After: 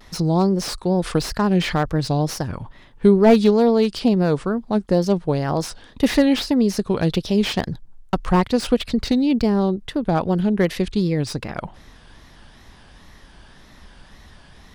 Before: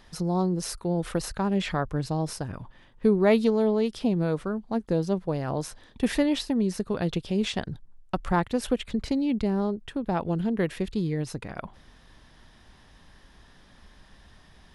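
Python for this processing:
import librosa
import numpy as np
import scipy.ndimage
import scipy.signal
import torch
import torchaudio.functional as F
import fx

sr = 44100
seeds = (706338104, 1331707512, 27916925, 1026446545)

y = fx.wow_flutter(x, sr, seeds[0], rate_hz=2.1, depth_cents=140.0)
y = fx.dynamic_eq(y, sr, hz=4800.0, q=1.8, threshold_db=-54.0, ratio=4.0, max_db=7)
y = fx.slew_limit(y, sr, full_power_hz=100.0)
y = F.gain(torch.from_numpy(y), 7.5).numpy()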